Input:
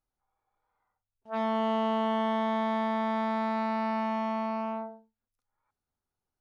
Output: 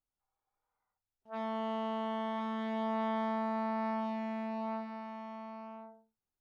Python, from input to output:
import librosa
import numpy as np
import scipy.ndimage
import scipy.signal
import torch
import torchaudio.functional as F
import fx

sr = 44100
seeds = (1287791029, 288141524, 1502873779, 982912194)

y = x + 10.0 ** (-6.0 / 20.0) * np.pad(x, (int(1039 * sr / 1000.0), 0))[:len(x)]
y = y * 10.0 ** (-8.0 / 20.0)